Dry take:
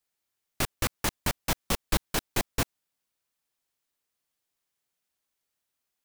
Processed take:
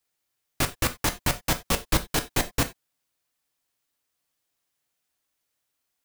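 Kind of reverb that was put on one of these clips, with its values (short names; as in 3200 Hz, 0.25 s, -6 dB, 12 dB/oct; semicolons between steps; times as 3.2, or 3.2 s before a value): non-linear reverb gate 0.11 s falling, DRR 7.5 dB; gain +3 dB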